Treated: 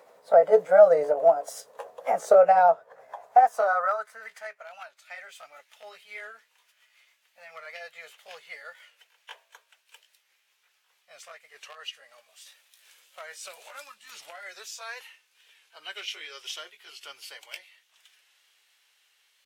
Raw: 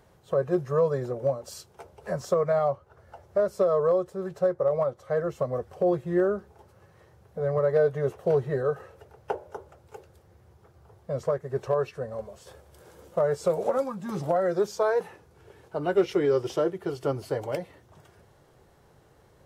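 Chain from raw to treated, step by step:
pitch glide at a constant tempo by +3.5 semitones ending unshifted
high-pass filter sweep 510 Hz → 2,700 Hz, 0:02.97–0:04.66
wow of a warped record 45 rpm, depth 100 cents
level +3 dB

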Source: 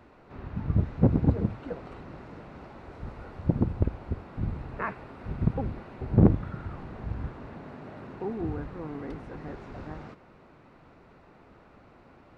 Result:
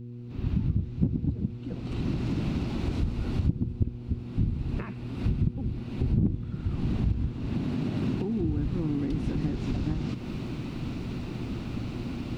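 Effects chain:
camcorder AGC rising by 39 dB per second
hum with harmonics 120 Hz, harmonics 4, −33 dBFS −4 dB per octave
flat-topped bell 930 Hz −15 dB 2.6 octaves
level −6.5 dB

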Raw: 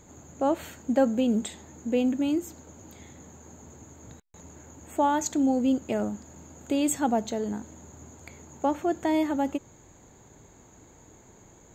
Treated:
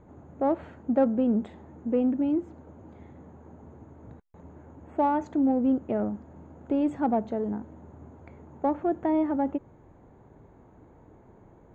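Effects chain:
low-pass filter 1,200 Hz 12 dB per octave
in parallel at −9.5 dB: soft clipping −23.5 dBFS, distortion −13 dB
on the sum: level −1.5 dB

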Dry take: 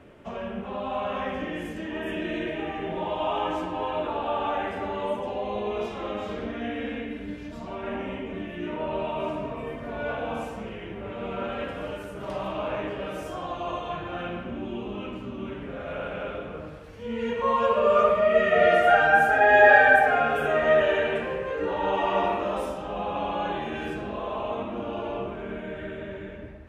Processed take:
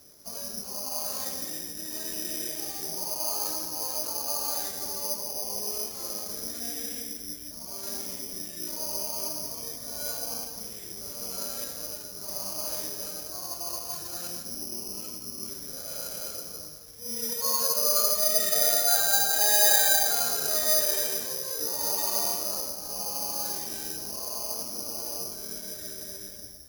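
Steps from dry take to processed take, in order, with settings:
in parallel at −3 dB: brickwall limiter −15 dBFS, peak gain reduction 11.5 dB
on the sum: bad sample-rate conversion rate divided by 8×, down filtered, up zero stuff
level −16.5 dB

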